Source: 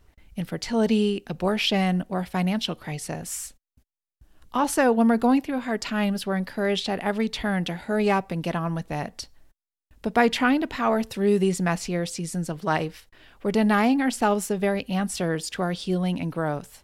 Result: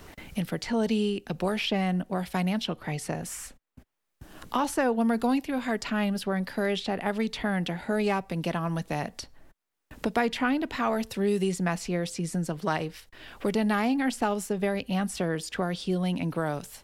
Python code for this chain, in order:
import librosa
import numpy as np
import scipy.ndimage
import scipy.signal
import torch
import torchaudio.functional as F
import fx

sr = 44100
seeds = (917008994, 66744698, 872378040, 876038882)

y = fx.band_squash(x, sr, depth_pct=70)
y = y * librosa.db_to_amplitude(-4.0)